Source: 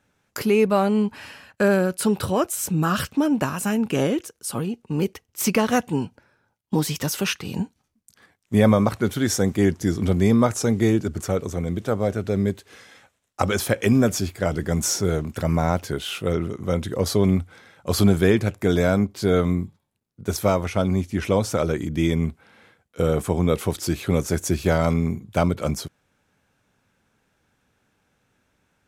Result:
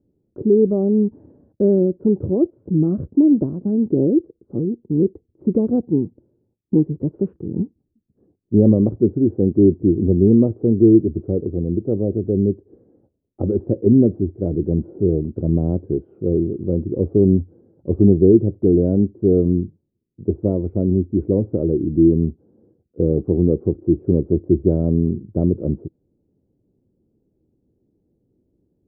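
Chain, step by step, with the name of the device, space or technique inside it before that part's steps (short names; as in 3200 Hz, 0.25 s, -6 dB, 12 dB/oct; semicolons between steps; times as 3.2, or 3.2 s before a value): under water (LPF 450 Hz 24 dB/oct; bell 340 Hz +8.5 dB 0.5 oct); gain +3 dB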